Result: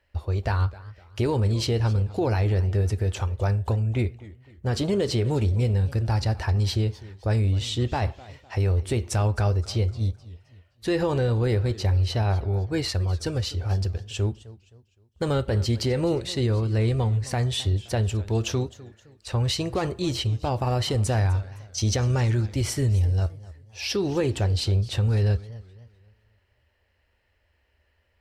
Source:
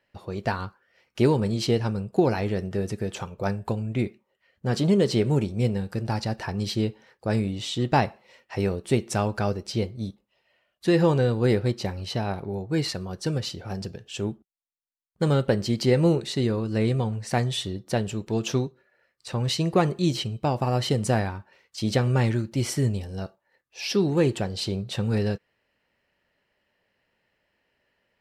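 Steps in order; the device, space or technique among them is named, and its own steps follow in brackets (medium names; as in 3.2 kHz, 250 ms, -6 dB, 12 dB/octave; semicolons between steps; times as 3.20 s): 21.12–22.31 s: peaking EQ 6 kHz +14 dB 0.28 oct; car stereo with a boomy subwoofer (resonant low shelf 110 Hz +13 dB, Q 3; peak limiter -17 dBFS, peak gain reduction 9 dB); modulated delay 257 ms, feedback 36%, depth 190 cents, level -19 dB; trim +1 dB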